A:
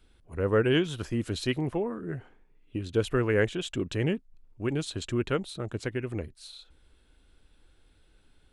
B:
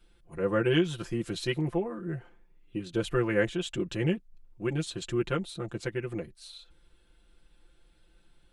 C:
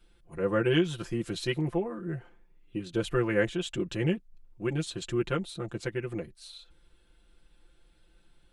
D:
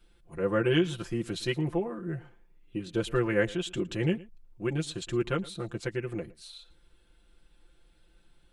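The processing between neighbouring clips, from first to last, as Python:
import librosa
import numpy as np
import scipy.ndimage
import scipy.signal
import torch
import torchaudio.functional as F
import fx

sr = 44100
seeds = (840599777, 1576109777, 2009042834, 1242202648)

y1 = x + 0.9 * np.pad(x, (int(5.8 * sr / 1000.0), 0))[:len(x)]
y1 = y1 * 10.0 ** (-3.5 / 20.0)
y2 = y1
y3 = y2 + 10.0 ** (-21.0 / 20.0) * np.pad(y2, (int(113 * sr / 1000.0), 0))[:len(y2)]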